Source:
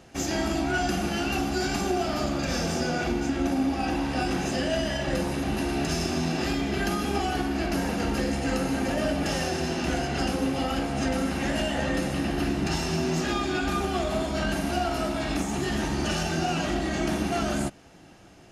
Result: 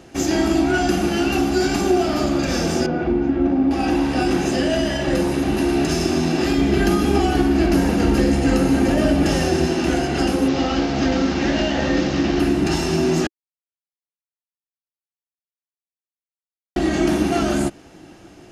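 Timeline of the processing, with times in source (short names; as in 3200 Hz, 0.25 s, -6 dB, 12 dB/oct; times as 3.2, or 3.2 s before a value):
2.86–3.71 tape spacing loss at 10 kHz 38 dB
6.58–9.67 low shelf 200 Hz +6.5 dB
10.48–12.4 delta modulation 32 kbps, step -29 dBFS
13.27–16.76 mute
whole clip: bell 330 Hz +7.5 dB 0.57 oct; gain +5 dB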